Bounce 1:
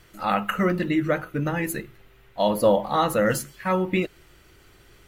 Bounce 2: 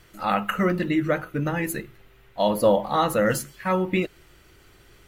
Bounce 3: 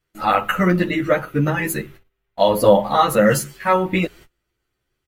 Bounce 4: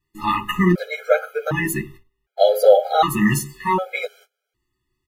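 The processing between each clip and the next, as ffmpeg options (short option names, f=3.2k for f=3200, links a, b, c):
-af anull
-filter_complex "[0:a]agate=range=-28dB:threshold=-46dB:ratio=16:detection=peak,asplit=2[a][b];[b]adelay=10.4,afreqshift=0.56[c];[a][c]amix=inputs=2:normalize=1,volume=9dB"
-af "afftfilt=real='re*gt(sin(2*PI*0.66*pts/sr)*(1-2*mod(floor(b*sr/1024/420),2)),0)':imag='im*gt(sin(2*PI*0.66*pts/sr)*(1-2*mod(floor(b*sr/1024/420),2)),0)':win_size=1024:overlap=0.75,volume=1.5dB"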